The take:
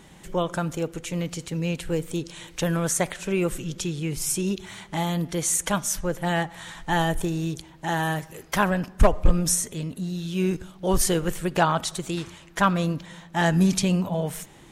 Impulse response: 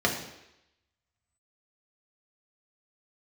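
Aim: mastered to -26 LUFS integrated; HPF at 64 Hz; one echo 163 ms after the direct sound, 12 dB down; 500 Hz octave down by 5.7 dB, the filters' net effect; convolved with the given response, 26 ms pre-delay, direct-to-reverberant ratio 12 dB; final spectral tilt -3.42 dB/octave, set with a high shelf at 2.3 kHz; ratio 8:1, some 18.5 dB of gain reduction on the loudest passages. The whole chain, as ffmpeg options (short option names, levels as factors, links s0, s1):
-filter_complex "[0:a]highpass=64,equalizer=f=500:t=o:g=-8.5,highshelf=f=2300:g=8.5,acompressor=threshold=0.0251:ratio=8,aecho=1:1:163:0.251,asplit=2[s0][s1];[1:a]atrim=start_sample=2205,adelay=26[s2];[s1][s2]afir=irnorm=-1:irlink=0,volume=0.0562[s3];[s0][s3]amix=inputs=2:normalize=0,volume=2.66"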